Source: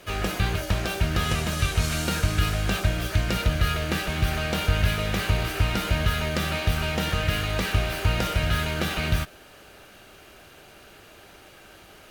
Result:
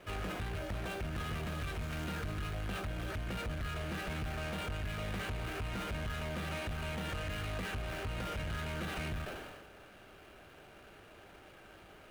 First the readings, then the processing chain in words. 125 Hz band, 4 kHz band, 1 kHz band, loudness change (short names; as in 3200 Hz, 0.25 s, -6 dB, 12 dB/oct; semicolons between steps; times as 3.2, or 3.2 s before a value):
-14.0 dB, -15.5 dB, -11.5 dB, -13.5 dB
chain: median filter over 9 samples; notch 7500 Hz, Q 26; compressor, threshold -24 dBFS, peak gain reduction 8 dB; soft clip -28.5 dBFS, distortion -10 dB; sustainer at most 36 dB/s; gain -5.5 dB